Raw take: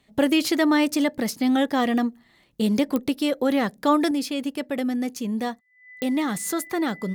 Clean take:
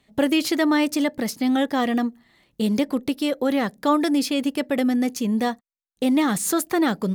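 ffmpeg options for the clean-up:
ffmpeg -i in.wav -af "adeclick=threshold=4,bandreject=frequency=2000:width=30,asetnsamples=nb_out_samples=441:pad=0,asendcmd='4.11 volume volume 4.5dB',volume=0dB" out.wav

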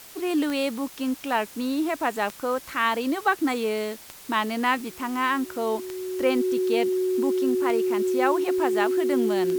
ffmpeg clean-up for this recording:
ffmpeg -i in.wav -af "adeclick=threshold=4,bandreject=frequency=370:width=30,afwtdn=0.0056" out.wav

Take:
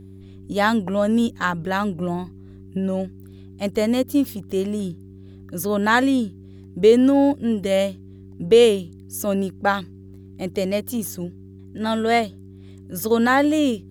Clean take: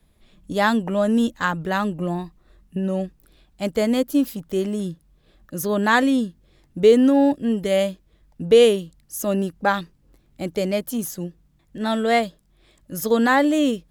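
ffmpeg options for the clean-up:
ffmpeg -i in.wav -af "bandreject=frequency=96.1:width_type=h:width=4,bandreject=frequency=192.2:width_type=h:width=4,bandreject=frequency=288.3:width_type=h:width=4,bandreject=frequency=384.4:width_type=h:width=4" out.wav

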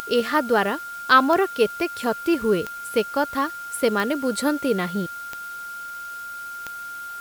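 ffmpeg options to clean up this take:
ffmpeg -i in.wav -af "adeclick=threshold=4,bandreject=frequency=1400:width=30,afftdn=noise_reduction=30:noise_floor=-35" out.wav

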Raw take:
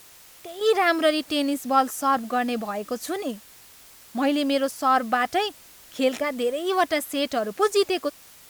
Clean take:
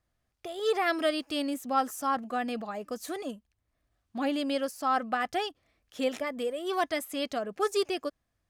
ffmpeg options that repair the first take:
ffmpeg -i in.wav -af "afwtdn=0.0035,asetnsamples=nb_out_samples=441:pad=0,asendcmd='0.61 volume volume -7dB',volume=0dB" out.wav

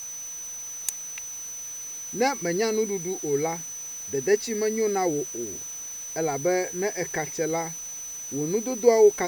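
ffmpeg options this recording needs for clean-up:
ffmpeg -i in.wav -af "bandreject=frequency=6000:width=30,afftdn=noise_reduction=30:noise_floor=-37" out.wav

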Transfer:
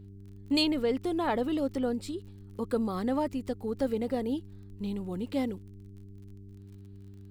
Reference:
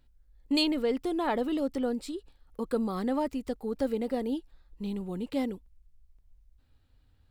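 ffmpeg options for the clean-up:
ffmpeg -i in.wav -af "adeclick=threshold=4,bandreject=frequency=98.8:width_type=h:width=4,bandreject=frequency=197.6:width_type=h:width=4,bandreject=frequency=296.4:width_type=h:width=4,bandreject=frequency=395.2:width_type=h:width=4" out.wav

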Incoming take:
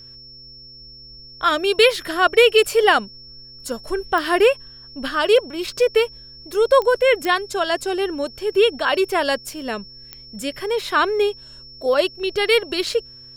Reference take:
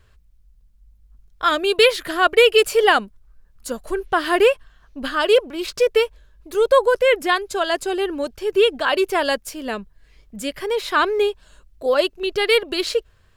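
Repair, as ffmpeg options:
ffmpeg -i in.wav -af "adeclick=threshold=4,bandreject=frequency=125.1:width_type=h:width=4,bandreject=frequency=250.2:width_type=h:width=4,bandreject=frequency=375.3:width_type=h:width=4,bandreject=frequency=500.4:width_type=h:width=4,bandreject=frequency=5400:width=30" out.wav

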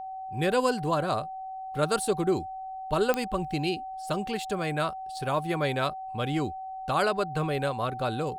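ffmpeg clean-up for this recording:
ffmpeg -i in.wav -af "adeclick=threshold=4,bandreject=frequency=760:width=30" out.wav

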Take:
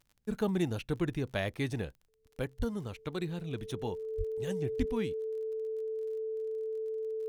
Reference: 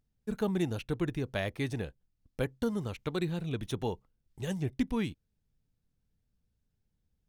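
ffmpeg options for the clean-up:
ffmpeg -i in.wav -filter_complex "[0:a]adeclick=threshold=4,bandreject=frequency=440:width=30,asplit=3[link_01][link_02][link_03];[link_01]afade=type=out:start_time=2.58:duration=0.02[link_04];[link_02]highpass=frequency=140:width=0.5412,highpass=frequency=140:width=1.3066,afade=type=in:start_time=2.58:duration=0.02,afade=type=out:start_time=2.7:duration=0.02[link_05];[link_03]afade=type=in:start_time=2.7:duration=0.02[link_06];[link_04][link_05][link_06]amix=inputs=3:normalize=0,asplit=3[link_07][link_08][link_09];[link_07]afade=type=out:start_time=4.17:duration=0.02[link_10];[link_08]highpass=frequency=140:width=0.5412,highpass=frequency=140:width=1.3066,afade=type=in:start_time=4.17:duration=0.02,afade=type=out:start_time=4.29:duration=0.02[link_11];[link_09]afade=type=in:start_time=4.29:duration=0.02[link_12];[link_10][link_11][link_12]amix=inputs=3:normalize=0,asplit=3[link_13][link_14][link_15];[link_13]afade=type=out:start_time=4.78:duration=0.02[link_16];[link_14]highpass=frequency=140:width=0.5412,highpass=frequency=140:width=1.3066,afade=type=in:start_time=4.78:duration=0.02,afade=type=out:start_time=4.9:duration=0.02[link_17];[link_15]afade=type=in:start_time=4.9:duration=0.02[link_18];[link_16][link_17][link_18]amix=inputs=3:normalize=0,asetnsamples=nb_out_samples=441:pad=0,asendcmd='2.09 volume volume 3.5dB',volume=0dB" out.wav

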